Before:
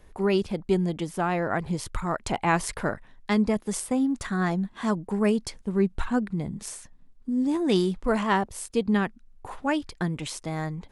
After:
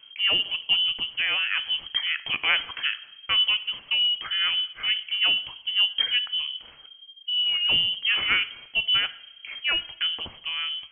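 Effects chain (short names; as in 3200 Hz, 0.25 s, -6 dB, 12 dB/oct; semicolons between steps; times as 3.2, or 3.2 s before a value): two-slope reverb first 0.73 s, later 1.9 s, DRR 12.5 dB; inverted band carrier 3200 Hz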